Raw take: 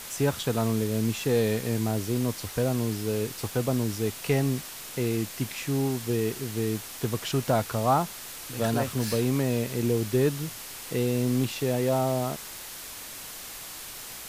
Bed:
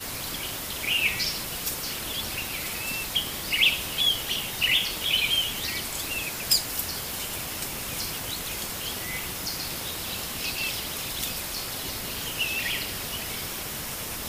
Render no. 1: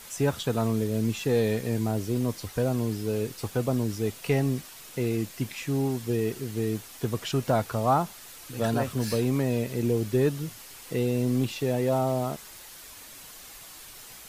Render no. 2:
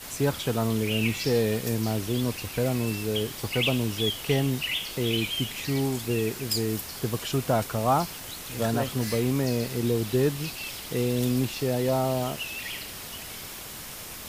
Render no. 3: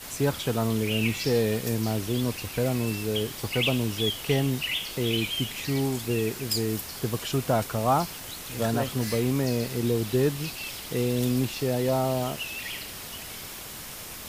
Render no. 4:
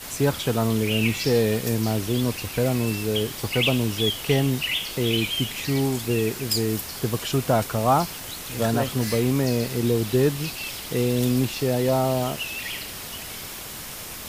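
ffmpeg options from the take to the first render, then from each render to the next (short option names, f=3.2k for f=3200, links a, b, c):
-af "afftdn=nr=7:nf=-41"
-filter_complex "[1:a]volume=-7dB[a];[0:a][a]amix=inputs=2:normalize=0"
-af anull
-af "volume=3.5dB"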